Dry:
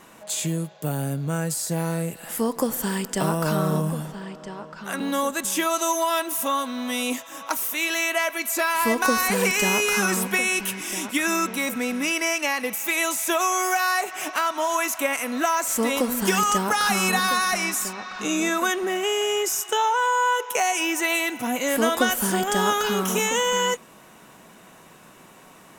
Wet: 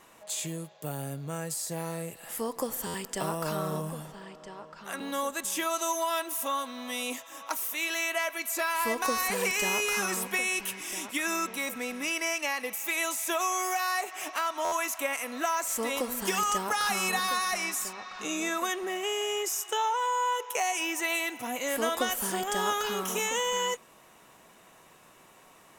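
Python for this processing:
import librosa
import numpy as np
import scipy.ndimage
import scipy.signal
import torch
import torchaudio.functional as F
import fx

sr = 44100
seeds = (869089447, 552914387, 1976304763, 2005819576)

y = fx.peak_eq(x, sr, hz=200.0, db=-7.0, octaves=1.3)
y = fx.notch(y, sr, hz=1500.0, q=19.0)
y = fx.buffer_glitch(y, sr, at_s=(2.86, 14.64), block=512, repeats=6)
y = y * librosa.db_to_amplitude(-6.0)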